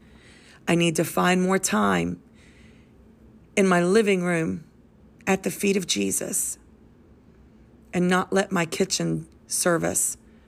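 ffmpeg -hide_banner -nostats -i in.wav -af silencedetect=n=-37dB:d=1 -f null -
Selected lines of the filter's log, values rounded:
silence_start: 2.15
silence_end: 3.57 | silence_duration: 1.42
silence_start: 6.54
silence_end: 7.94 | silence_duration: 1.39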